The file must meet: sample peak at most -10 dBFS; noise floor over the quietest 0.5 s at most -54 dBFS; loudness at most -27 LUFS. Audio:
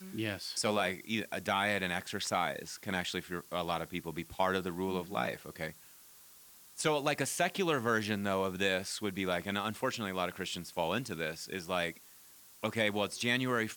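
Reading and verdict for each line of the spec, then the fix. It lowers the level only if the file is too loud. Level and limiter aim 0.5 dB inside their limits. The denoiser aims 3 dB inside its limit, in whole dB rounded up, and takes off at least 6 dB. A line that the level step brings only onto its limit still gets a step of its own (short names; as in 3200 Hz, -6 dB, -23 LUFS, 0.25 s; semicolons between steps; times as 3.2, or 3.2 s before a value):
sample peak -17.5 dBFS: OK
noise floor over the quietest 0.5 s -57 dBFS: OK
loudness -34.0 LUFS: OK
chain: none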